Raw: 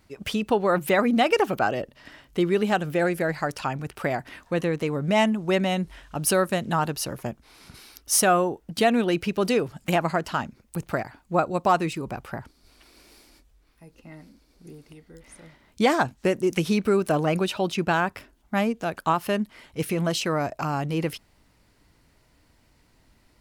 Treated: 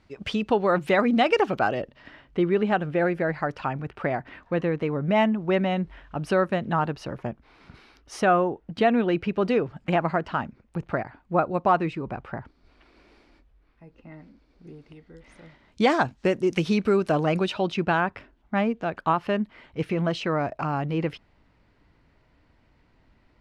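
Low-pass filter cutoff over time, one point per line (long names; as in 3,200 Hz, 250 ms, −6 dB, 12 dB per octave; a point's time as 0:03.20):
0:01.65 4,500 Hz
0:02.39 2,400 Hz
0:14.12 2,400 Hz
0:15.85 5,100 Hz
0:17.40 5,100 Hz
0:18.08 2,800 Hz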